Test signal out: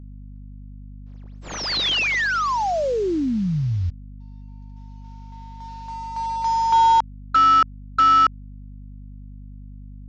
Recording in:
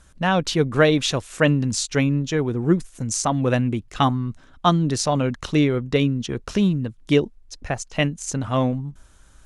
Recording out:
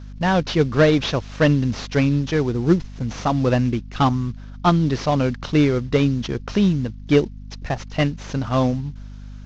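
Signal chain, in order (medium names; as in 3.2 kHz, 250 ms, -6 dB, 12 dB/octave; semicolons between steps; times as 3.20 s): CVSD coder 32 kbps; hum 50 Hz, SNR 16 dB; trim +2 dB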